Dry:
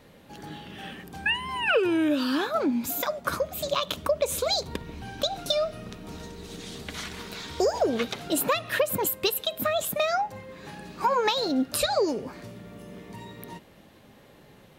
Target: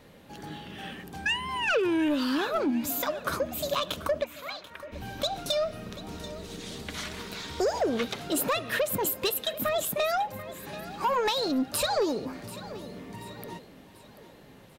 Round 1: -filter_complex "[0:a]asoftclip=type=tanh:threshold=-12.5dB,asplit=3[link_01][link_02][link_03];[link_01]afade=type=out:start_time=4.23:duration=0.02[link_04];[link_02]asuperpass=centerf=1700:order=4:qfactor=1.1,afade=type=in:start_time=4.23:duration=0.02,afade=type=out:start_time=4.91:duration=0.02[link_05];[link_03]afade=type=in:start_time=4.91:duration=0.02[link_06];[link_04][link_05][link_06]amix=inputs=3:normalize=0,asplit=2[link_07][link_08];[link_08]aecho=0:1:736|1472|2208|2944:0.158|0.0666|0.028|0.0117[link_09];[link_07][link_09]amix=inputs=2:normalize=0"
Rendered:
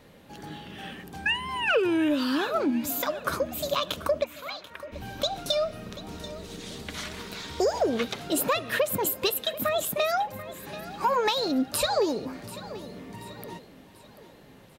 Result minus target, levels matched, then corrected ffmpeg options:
soft clipping: distortion −11 dB
-filter_complex "[0:a]asoftclip=type=tanh:threshold=-20dB,asplit=3[link_01][link_02][link_03];[link_01]afade=type=out:start_time=4.23:duration=0.02[link_04];[link_02]asuperpass=centerf=1700:order=4:qfactor=1.1,afade=type=in:start_time=4.23:duration=0.02,afade=type=out:start_time=4.91:duration=0.02[link_05];[link_03]afade=type=in:start_time=4.91:duration=0.02[link_06];[link_04][link_05][link_06]amix=inputs=3:normalize=0,asplit=2[link_07][link_08];[link_08]aecho=0:1:736|1472|2208|2944:0.158|0.0666|0.028|0.0117[link_09];[link_07][link_09]amix=inputs=2:normalize=0"

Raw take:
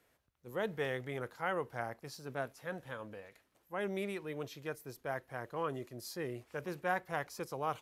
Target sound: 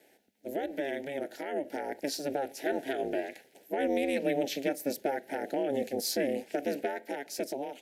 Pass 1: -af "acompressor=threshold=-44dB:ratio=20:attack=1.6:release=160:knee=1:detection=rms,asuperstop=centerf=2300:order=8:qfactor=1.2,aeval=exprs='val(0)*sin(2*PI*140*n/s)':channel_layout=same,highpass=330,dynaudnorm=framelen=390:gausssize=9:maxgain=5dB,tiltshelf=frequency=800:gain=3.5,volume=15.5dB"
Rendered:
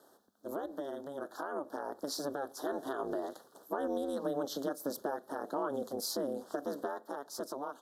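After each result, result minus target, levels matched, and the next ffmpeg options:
downward compressor: peak gain reduction +5.5 dB; 2,000 Hz band −4.0 dB
-af "acompressor=threshold=-38dB:ratio=20:attack=1.6:release=160:knee=1:detection=rms,asuperstop=centerf=2300:order=8:qfactor=1.2,aeval=exprs='val(0)*sin(2*PI*140*n/s)':channel_layout=same,highpass=330,dynaudnorm=framelen=390:gausssize=9:maxgain=5dB,tiltshelf=frequency=800:gain=3.5,volume=15.5dB"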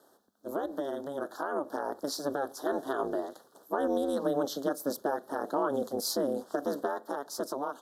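2,000 Hz band −4.0 dB
-af "acompressor=threshold=-38dB:ratio=20:attack=1.6:release=160:knee=1:detection=rms,asuperstop=centerf=1100:order=8:qfactor=1.2,aeval=exprs='val(0)*sin(2*PI*140*n/s)':channel_layout=same,highpass=330,dynaudnorm=framelen=390:gausssize=9:maxgain=5dB,tiltshelf=frequency=800:gain=3.5,volume=15.5dB"

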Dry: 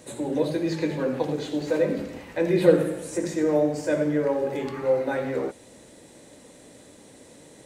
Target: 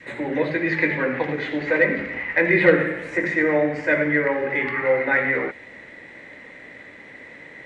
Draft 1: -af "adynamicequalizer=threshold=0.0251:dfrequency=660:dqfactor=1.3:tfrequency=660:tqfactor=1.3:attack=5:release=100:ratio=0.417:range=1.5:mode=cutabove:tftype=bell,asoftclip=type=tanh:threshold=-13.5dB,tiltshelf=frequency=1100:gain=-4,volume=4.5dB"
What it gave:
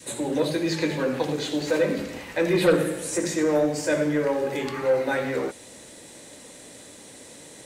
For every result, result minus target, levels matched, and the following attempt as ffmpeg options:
soft clipping: distortion +13 dB; 2,000 Hz band −8.0 dB
-af "adynamicequalizer=threshold=0.0251:dfrequency=660:dqfactor=1.3:tfrequency=660:tqfactor=1.3:attack=5:release=100:ratio=0.417:range=1.5:mode=cutabove:tftype=bell,asoftclip=type=tanh:threshold=-3.5dB,tiltshelf=frequency=1100:gain=-4,volume=4.5dB"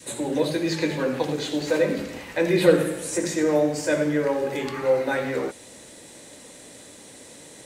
2,000 Hz band −8.5 dB
-af "adynamicequalizer=threshold=0.0251:dfrequency=660:dqfactor=1.3:tfrequency=660:tqfactor=1.3:attack=5:release=100:ratio=0.417:range=1.5:mode=cutabove:tftype=bell,lowpass=frequency=2000:width_type=q:width=6.8,asoftclip=type=tanh:threshold=-3.5dB,tiltshelf=frequency=1100:gain=-4,volume=4.5dB"

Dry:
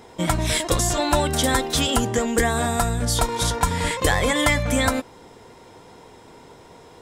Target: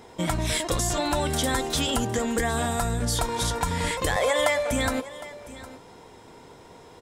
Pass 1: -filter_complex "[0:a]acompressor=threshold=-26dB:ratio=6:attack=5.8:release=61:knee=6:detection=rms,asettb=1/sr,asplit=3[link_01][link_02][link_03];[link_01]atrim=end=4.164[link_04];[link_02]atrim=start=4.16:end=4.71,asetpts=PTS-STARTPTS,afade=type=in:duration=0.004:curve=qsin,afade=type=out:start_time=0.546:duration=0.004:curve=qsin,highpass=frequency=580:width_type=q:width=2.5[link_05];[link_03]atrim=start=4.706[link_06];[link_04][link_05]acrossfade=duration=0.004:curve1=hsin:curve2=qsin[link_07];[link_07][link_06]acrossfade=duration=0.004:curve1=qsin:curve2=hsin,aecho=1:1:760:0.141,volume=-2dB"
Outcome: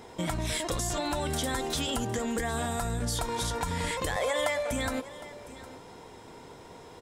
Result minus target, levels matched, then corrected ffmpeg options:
downward compressor: peak gain reduction +6.5 dB
-filter_complex "[0:a]acompressor=threshold=-18dB:ratio=6:attack=5.8:release=61:knee=6:detection=rms,asettb=1/sr,asplit=3[link_01][link_02][link_03];[link_01]atrim=end=4.164[link_04];[link_02]atrim=start=4.16:end=4.71,asetpts=PTS-STARTPTS,afade=type=in:duration=0.004:curve=qsin,afade=type=out:start_time=0.546:duration=0.004:curve=qsin,highpass=frequency=580:width_type=q:width=2.5[link_05];[link_03]atrim=start=4.706[link_06];[link_04][link_05]acrossfade=duration=0.004:curve1=hsin:curve2=qsin[link_07];[link_07][link_06]acrossfade=duration=0.004:curve1=qsin:curve2=hsin,aecho=1:1:760:0.141,volume=-2dB"

